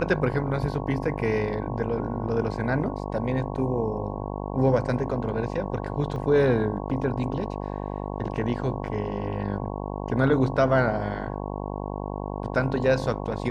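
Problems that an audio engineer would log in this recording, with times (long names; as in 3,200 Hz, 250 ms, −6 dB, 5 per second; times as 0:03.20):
mains buzz 50 Hz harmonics 22 −32 dBFS
0:06.16: drop-out 3.2 ms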